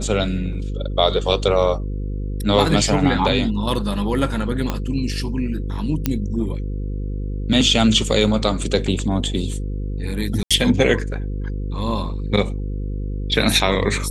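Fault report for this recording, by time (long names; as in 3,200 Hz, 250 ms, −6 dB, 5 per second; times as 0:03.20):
mains buzz 50 Hz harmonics 10 −25 dBFS
0:04.70: click −8 dBFS
0:06.06: click −5 dBFS
0:10.43–0:10.51: drop-out 76 ms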